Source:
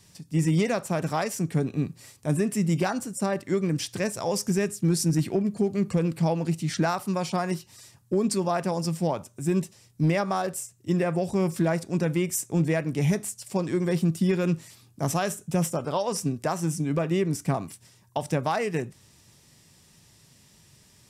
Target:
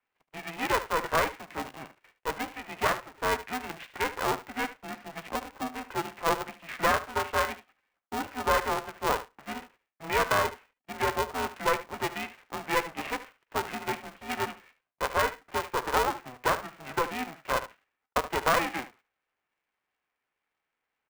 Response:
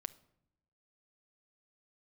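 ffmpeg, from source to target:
-filter_complex "[0:a]asplit=2[a][b];[b]aeval=exprs='val(0)*gte(abs(val(0)),0.02)':c=same,volume=-7dB[c];[a][c]amix=inputs=2:normalize=0,highpass=f=550:t=q:w=0.5412,highpass=f=550:t=q:w=1.307,lowpass=f=2.3k:t=q:w=0.5176,lowpass=f=2.3k:t=q:w=0.7071,lowpass=f=2.3k:t=q:w=1.932,afreqshift=110,agate=range=-16dB:threshold=-56dB:ratio=16:detection=peak,aecho=1:1:74:0.2,aeval=exprs='val(0)*sgn(sin(2*PI*250*n/s))':c=same"

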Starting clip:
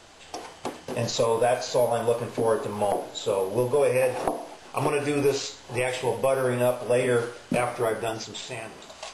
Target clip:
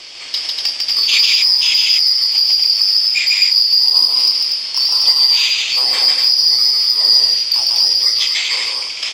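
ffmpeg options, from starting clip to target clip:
-filter_complex "[0:a]afftfilt=real='real(if(lt(b,272),68*(eq(floor(b/68),0)*1+eq(floor(b/68),1)*2+eq(floor(b/68),2)*3+eq(floor(b/68),3)*0)+mod(b,68),b),0)':imag='imag(if(lt(b,272),68*(eq(floor(b/68),0)*1+eq(floor(b/68),1)*2+eq(floor(b/68),2)*3+eq(floor(b/68),3)*0)+mod(b,68),b),0)':win_size=2048:overlap=0.75,acrossover=split=1000[a][b];[a]acompressor=mode=upward:threshold=-48dB:ratio=2.5[c];[c][b]amix=inputs=2:normalize=0,asoftclip=type=hard:threshold=-17.5dB,aexciter=amount=8.8:drive=5.1:freq=2.3k,acompressor=threshold=-7dB:ratio=6,acrossover=split=340 3700:gain=0.224 1 0.0794[d][e][f];[d][e][f]amix=inputs=3:normalize=0,asoftclip=type=tanh:threshold=-11.5dB,aecho=1:1:32.07|148.7|242:0.316|0.794|0.631,volume=6dB"

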